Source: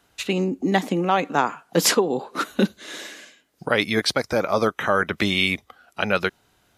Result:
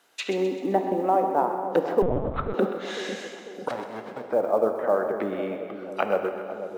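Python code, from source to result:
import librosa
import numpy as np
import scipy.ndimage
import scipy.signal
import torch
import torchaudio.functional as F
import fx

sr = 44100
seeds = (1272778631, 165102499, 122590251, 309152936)

y = fx.envelope_flatten(x, sr, power=0.1, at=(3.68, 4.2), fade=0.02)
y = scipy.signal.sosfilt(scipy.signal.butter(2, 370.0, 'highpass', fs=sr, output='sos'), y)
y = fx.env_lowpass_down(y, sr, base_hz=580.0, full_db=-22.0)
y = fx.dynamic_eq(y, sr, hz=760.0, q=1.5, threshold_db=-35.0, ratio=4.0, max_db=6)
y = fx.quant_companded(y, sr, bits=8)
y = fx.echo_split(y, sr, split_hz=780.0, low_ms=495, high_ms=129, feedback_pct=52, wet_db=-10.0)
y = fx.rev_plate(y, sr, seeds[0], rt60_s=2.3, hf_ratio=0.75, predelay_ms=0, drr_db=6.0)
y = fx.lpc_vocoder(y, sr, seeds[1], excitation='pitch_kept', order=8, at=(2.02, 2.54))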